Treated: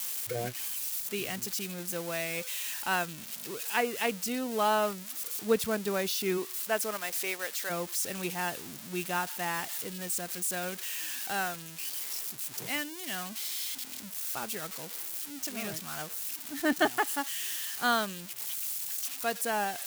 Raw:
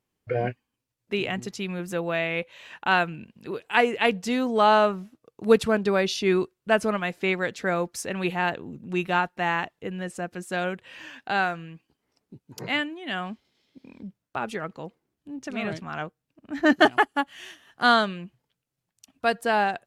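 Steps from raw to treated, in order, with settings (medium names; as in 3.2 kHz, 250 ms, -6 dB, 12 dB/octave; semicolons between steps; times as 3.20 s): zero-crossing glitches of -18 dBFS; 6.37–7.69 s: high-pass 220 Hz -> 590 Hz 12 dB/octave; trim -8.5 dB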